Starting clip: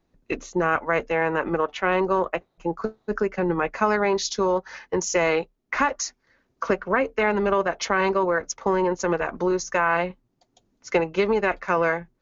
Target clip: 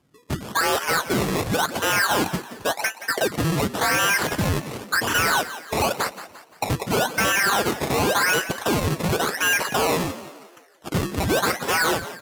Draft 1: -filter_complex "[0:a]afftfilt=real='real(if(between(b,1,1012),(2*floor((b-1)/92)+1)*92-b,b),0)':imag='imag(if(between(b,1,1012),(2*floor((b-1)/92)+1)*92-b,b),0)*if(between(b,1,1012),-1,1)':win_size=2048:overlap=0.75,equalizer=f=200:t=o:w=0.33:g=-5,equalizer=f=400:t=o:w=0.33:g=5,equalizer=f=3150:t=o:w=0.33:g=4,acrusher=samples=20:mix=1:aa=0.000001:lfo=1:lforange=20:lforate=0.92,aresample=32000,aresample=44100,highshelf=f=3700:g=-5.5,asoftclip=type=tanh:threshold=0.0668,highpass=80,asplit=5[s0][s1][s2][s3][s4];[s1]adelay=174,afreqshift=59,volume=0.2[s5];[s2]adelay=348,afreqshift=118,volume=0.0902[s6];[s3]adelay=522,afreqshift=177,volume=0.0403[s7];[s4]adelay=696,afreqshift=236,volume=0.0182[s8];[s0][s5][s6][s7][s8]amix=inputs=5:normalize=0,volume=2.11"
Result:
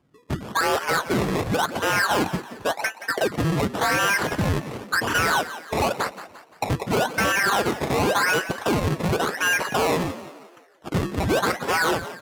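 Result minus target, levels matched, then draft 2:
8 kHz band -3.5 dB
-filter_complex "[0:a]afftfilt=real='real(if(between(b,1,1012),(2*floor((b-1)/92)+1)*92-b,b),0)':imag='imag(if(between(b,1,1012),(2*floor((b-1)/92)+1)*92-b,b),0)*if(between(b,1,1012),-1,1)':win_size=2048:overlap=0.75,equalizer=f=200:t=o:w=0.33:g=-5,equalizer=f=400:t=o:w=0.33:g=5,equalizer=f=3150:t=o:w=0.33:g=4,acrusher=samples=20:mix=1:aa=0.000001:lfo=1:lforange=20:lforate=0.92,aresample=32000,aresample=44100,highshelf=f=3700:g=4.5,asoftclip=type=tanh:threshold=0.0668,highpass=80,asplit=5[s0][s1][s2][s3][s4];[s1]adelay=174,afreqshift=59,volume=0.2[s5];[s2]adelay=348,afreqshift=118,volume=0.0902[s6];[s3]adelay=522,afreqshift=177,volume=0.0403[s7];[s4]adelay=696,afreqshift=236,volume=0.0182[s8];[s0][s5][s6][s7][s8]amix=inputs=5:normalize=0,volume=2.11"

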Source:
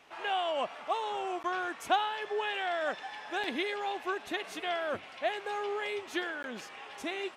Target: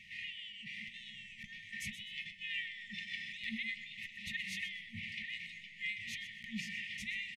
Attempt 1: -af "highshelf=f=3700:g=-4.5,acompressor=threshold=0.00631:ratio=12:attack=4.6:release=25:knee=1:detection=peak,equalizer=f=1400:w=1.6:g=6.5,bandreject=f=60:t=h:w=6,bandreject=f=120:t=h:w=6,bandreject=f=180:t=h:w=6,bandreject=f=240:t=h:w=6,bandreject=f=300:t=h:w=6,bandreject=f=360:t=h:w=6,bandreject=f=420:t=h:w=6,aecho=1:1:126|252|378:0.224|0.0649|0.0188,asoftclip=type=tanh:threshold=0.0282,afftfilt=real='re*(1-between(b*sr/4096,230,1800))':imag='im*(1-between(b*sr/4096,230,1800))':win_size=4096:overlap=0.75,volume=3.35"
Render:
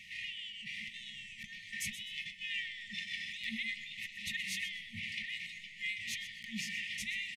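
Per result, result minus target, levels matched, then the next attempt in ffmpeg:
saturation: distortion +19 dB; 8 kHz band +5.5 dB
-af "highshelf=f=3700:g=-4.5,acompressor=threshold=0.00631:ratio=12:attack=4.6:release=25:knee=1:detection=peak,equalizer=f=1400:w=1.6:g=6.5,bandreject=f=60:t=h:w=6,bandreject=f=120:t=h:w=6,bandreject=f=180:t=h:w=6,bandreject=f=240:t=h:w=6,bandreject=f=300:t=h:w=6,bandreject=f=360:t=h:w=6,bandreject=f=420:t=h:w=6,aecho=1:1:126|252|378:0.224|0.0649|0.0188,asoftclip=type=tanh:threshold=0.0841,afftfilt=real='re*(1-between(b*sr/4096,230,1800))':imag='im*(1-between(b*sr/4096,230,1800))':win_size=4096:overlap=0.75,volume=3.35"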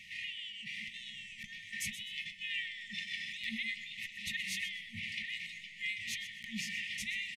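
8 kHz band +5.5 dB
-af "highshelf=f=3700:g=-15.5,acompressor=threshold=0.00631:ratio=12:attack=4.6:release=25:knee=1:detection=peak,equalizer=f=1400:w=1.6:g=6.5,bandreject=f=60:t=h:w=6,bandreject=f=120:t=h:w=6,bandreject=f=180:t=h:w=6,bandreject=f=240:t=h:w=6,bandreject=f=300:t=h:w=6,bandreject=f=360:t=h:w=6,bandreject=f=420:t=h:w=6,aecho=1:1:126|252|378:0.224|0.0649|0.0188,asoftclip=type=tanh:threshold=0.0841,afftfilt=real='re*(1-between(b*sr/4096,230,1800))':imag='im*(1-between(b*sr/4096,230,1800))':win_size=4096:overlap=0.75,volume=3.35"

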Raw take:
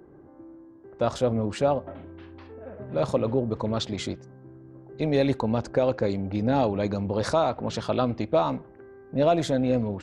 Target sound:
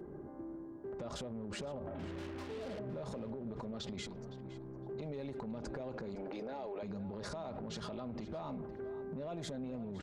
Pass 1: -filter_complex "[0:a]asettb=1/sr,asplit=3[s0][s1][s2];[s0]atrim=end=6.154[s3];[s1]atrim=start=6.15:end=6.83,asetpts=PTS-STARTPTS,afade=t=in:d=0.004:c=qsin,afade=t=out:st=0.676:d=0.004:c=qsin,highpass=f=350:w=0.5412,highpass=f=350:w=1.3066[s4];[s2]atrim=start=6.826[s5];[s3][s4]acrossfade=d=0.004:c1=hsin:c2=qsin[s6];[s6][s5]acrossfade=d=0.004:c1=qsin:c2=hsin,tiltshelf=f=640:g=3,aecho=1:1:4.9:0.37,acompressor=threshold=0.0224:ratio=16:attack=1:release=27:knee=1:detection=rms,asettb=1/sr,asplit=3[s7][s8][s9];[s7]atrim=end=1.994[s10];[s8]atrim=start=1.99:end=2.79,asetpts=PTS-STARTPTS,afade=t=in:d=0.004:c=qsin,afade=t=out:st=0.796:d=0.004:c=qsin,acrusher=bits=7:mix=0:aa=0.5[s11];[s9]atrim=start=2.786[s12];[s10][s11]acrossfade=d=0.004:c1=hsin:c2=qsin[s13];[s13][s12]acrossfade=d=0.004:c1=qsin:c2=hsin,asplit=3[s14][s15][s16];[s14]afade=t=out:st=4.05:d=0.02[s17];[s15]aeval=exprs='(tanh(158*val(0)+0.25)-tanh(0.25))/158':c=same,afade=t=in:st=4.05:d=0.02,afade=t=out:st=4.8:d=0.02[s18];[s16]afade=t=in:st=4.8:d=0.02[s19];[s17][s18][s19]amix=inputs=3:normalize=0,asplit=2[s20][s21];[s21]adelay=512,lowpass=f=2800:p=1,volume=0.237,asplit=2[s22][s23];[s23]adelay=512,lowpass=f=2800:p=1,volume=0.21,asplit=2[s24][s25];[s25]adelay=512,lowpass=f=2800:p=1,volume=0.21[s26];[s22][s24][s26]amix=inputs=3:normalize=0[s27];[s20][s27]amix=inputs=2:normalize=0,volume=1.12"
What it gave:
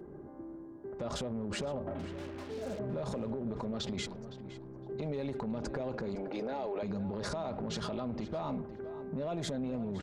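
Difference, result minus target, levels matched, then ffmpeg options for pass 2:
compression: peak gain reduction -6 dB
-filter_complex "[0:a]asettb=1/sr,asplit=3[s0][s1][s2];[s0]atrim=end=6.154[s3];[s1]atrim=start=6.15:end=6.83,asetpts=PTS-STARTPTS,afade=t=in:d=0.004:c=qsin,afade=t=out:st=0.676:d=0.004:c=qsin,highpass=f=350:w=0.5412,highpass=f=350:w=1.3066[s4];[s2]atrim=start=6.826[s5];[s3][s4]acrossfade=d=0.004:c1=hsin:c2=qsin[s6];[s6][s5]acrossfade=d=0.004:c1=qsin:c2=hsin,tiltshelf=f=640:g=3,aecho=1:1:4.9:0.37,acompressor=threshold=0.0106:ratio=16:attack=1:release=27:knee=1:detection=rms,asettb=1/sr,asplit=3[s7][s8][s9];[s7]atrim=end=1.994[s10];[s8]atrim=start=1.99:end=2.79,asetpts=PTS-STARTPTS,afade=t=in:d=0.004:c=qsin,afade=t=out:st=0.796:d=0.004:c=qsin,acrusher=bits=7:mix=0:aa=0.5[s11];[s9]atrim=start=2.786[s12];[s10][s11]acrossfade=d=0.004:c1=hsin:c2=qsin[s13];[s13][s12]acrossfade=d=0.004:c1=qsin:c2=hsin,asplit=3[s14][s15][s16];[s14]afade=t=out:st=4.05:d=0.02[s17];[s15]aeval=exprs='(tanh(158*val(0)+0.25)-tanh(0.25))/158':c=same,afade=t=in:st=4.05:d=0.02,afade=t=out:st=4.8:d=0.02[s18];[s16]afade=t=in:st=4.8:d=0.02[s19];[s17][s18][s19]amix=inputs=3:normalize=0,asplit=2[s20][s21];[s21]adelay=512,lowpass=f=2800:p=1,volume=0.237,asplit=2[s22][s23];[s23]adelay=512,lowpass=f=2800:p=1,volume=0.21,asplit=2[s24][s25];[s25]adelay=512,lowpass=f=2800:p=1,volume=0.21[s26];[s22][s24][s26]amix=inputs=3:normalize=0[s27];[s20][s27]amix=inputs=2:normalize=0,volume=1.12"

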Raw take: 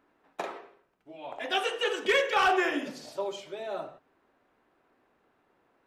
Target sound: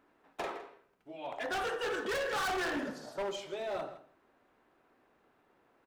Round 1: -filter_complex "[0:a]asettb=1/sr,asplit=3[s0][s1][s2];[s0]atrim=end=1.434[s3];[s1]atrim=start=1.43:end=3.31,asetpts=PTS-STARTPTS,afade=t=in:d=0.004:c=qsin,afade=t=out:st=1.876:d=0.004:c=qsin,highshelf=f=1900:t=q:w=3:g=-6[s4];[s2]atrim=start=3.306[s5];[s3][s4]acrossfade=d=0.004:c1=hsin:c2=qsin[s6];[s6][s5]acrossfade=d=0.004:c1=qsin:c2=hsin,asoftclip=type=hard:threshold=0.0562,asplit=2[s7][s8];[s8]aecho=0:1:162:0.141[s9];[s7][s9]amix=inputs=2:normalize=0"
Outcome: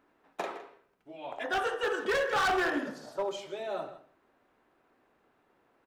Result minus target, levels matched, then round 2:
hard clipper: distortion -5 dB
-filter_complex "[0:a]asettb=1/sr,asplit=3[s0][s1][s2];[s0]atrim=end=1.434[s3];[s1]atrim=start=1.43:end=3.31,asetpts=PTS-STARTPTS,afade=t=in:d=0.004:c=qsin,afade=t=out:st=1.876:d=0.004:c=qsin,highshelf=f=1900:t=q:w=3:g=-6[s4];[s2]atrim=start=3.306[s5];[s3][s4]acrossfade=d=0.004:c1=hsin:c2=qsin[s6];[s6][s5]acrossfade=d=0.004:c1=qsin:c2=hsin,asoftclip=type=hard:threshold=0.0251,asplit=2[s7][s8];[s8]aecho=0:1:162:0.141[s9];[s7][s9]amix=inputs=2:normalize=0"

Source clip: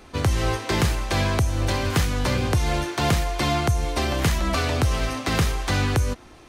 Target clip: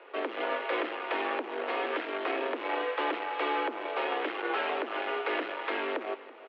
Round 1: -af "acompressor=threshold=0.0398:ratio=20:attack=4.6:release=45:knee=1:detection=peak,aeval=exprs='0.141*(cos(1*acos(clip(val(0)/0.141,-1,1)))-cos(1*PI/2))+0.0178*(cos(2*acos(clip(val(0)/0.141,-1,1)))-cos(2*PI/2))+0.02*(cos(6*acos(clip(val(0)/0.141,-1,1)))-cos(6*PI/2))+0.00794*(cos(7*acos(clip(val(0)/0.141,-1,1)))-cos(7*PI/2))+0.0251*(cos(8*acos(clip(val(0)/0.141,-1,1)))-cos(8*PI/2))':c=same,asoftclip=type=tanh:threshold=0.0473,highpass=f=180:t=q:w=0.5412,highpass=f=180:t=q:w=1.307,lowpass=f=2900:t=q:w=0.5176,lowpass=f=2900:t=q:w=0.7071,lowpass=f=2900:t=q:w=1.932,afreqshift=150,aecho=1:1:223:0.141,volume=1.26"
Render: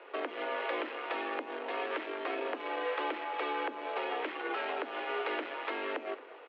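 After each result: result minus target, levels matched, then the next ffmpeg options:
compression: peak gain reduction +8 dB; echo 107 ms early
-af "acompressor=threshold=0.106:ratio=20:attack=4.6:release=45:knee=1:detection=peak,aeval=exprs='0.141*(cos(1*acos(clip(val(0)/0.141,-1,1)))-cos(1*PI/2))+0.0178*(cos(2*acos(clip(val(0)/0.141,-1,1)))-cos(2*PI/2))+0.02*(cos(6*acos(clip(val(0)/0.141,-1,1)))-cos(6*PI/2))+0.00794*(cos(7*acos(clip(val(0)/0.141,-1,1)))-cos(7*PI/2))+0.0251*(cos(8*acos(clip(val(0)/0.141,-1,1)))-cos(8*PI/2))':c=same,asoftclip=type=tanh:threshold=0.0473,highpass=f=180:t=q:w=0.5412,highpass=f=180:t=q:w=1.307,lowpass=f=2900:t=q:w=0.5176,lowpass=f=2900:t=q:w=0.7071,lowpass=f=2900:t=q:w=1.932,afreqshift=150,aecho=1:1:223:0.141,volume=1.26"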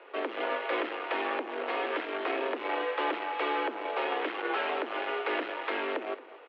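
echo 107 ms early
-af "acompressor=threshold=0.106:ratio=20:attack=4.6:release=45:knee=1:detection=peak,aeval=exprs='0.141*(cos(1*acos(clip(val(0)/0.141,-1,1)))-cos(1*PI/2))+0.0178*(cos(2*acos(clip(val(0)/0.141,-1,1)))-cos(2*PI/2))+0.02*(cos(6*acos(clip(val(0)/0.141,-1,1)))-cos(6*PI/2))+0.00794*(cos(7*acos(clip(val(0)/0.141,-1,1)))-cos(7*PI/2))+0.0251*(cos(8*acos(clip(val(0)/0.141,-1,1)))-cos(8*PI/2))':c=same,asoftclip=type=tanh:threshold=0.0473,highpass=f=180:t=q:w=0.5412,highpass=f=180:t=q:w=1.307,lowpass=f=2900:t=q:w=0.5176,lowpass=f=2900:t=q:w=0.7071,lowpass=f=2900:t=q:w=1.932,afreqshift=150,aecho=1:1:330:0.141,volume=1.26"

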